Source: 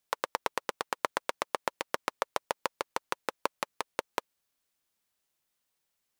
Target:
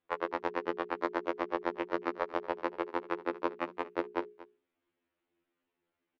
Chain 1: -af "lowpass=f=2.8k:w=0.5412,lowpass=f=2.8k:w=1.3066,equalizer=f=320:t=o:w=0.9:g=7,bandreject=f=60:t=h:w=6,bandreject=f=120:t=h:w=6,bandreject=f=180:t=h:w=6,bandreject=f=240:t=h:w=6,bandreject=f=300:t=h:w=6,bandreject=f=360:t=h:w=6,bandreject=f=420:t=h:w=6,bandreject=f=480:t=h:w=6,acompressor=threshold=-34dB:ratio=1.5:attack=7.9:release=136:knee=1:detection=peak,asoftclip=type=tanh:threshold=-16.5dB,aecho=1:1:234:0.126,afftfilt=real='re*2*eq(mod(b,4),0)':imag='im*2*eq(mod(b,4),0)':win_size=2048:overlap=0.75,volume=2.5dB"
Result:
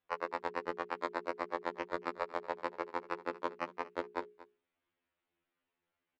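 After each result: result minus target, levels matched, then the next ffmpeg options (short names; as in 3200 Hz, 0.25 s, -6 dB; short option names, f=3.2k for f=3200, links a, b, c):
soft clip: distortion +8 dB; 250 Hz band -4.0 dB
-af "lowpass=f=2.8k:w=0.5412,lowpass=f=2.8k:w=1.3066,equalizer=f=320:t=o:w=0.9:g=7,bandreject=f=60:t=h:w=6,bandreject=f=120:t=h:w=6,bandreject=f=180:t=h:w=6,bandreject=f=240:t=h:w=6,bandreject=f=300:t=h:w=6,bandreject=f=360:t=h:w=6,bandreject=f=420:t=h:w=6,bandreject=f=480:t=h:w=6,acompressor=threshold=-34dB:ratio=1.5:attack=7.9:release=136:knee=1:detection=peak,asoftclip=type=tanh:threshold=-9.5dB,aecho=1:1:234:0.126,afftfilt=real='re*2*eq(mod(b,4),0)':imag='im*2*eq(mod(b,4),0)':win_size=2048:overlap=0.75,volume=2.5dB"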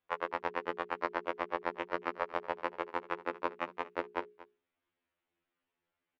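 250 Hz band -5.5 dB
-af "lowpass=f=2.8k:w=0.5412,lowpass=f=2.8k:w=1.3066,equalizer=f=320:t=o:w=0.9:g=17,bandreject=f=60:t=h:w=6,bandreject=f=120:t=h:w=6,bandreject=f=180:t=h:w=6,bandreject=f=240:t=h:w=6,bandreject=f=300:t=h:w=6,bandreject=f=360:t=h:w=6,bandreject=f=420:t=h:w=6,bandreject=f=480:t=h:w=6,acompressor=threshold=-34dB:ratio=1.5:attack=7.9:release=136:knee=1:detection=peak,asoftclip=type=tanh:threshold=-9.5dB,aecho=1:1:234:0.126,afftfilt=real='re*2*eq(mod(b,4),0)':imag='im*2*eq(mod(b,4),0)':win_size=2048:overlap=0.75,volume=2.5dB"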